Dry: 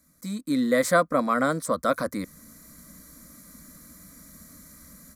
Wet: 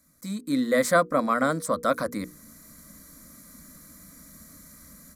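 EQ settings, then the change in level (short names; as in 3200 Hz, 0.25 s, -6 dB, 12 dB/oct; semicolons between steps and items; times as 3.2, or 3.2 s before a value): notches 60/120/180/240/300/360/420/480 Hz; 0.0 dB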